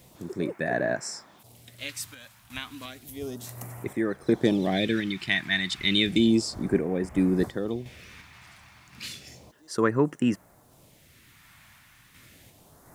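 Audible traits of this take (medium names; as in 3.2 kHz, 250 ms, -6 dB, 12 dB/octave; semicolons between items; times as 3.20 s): phasing stages 2, 0.32 Hz, lowest notch 450–3700 Hz; random-step tremolo 2.8 Hz, depth 65%; a quantiser's noise floor 12-bit, dither triangular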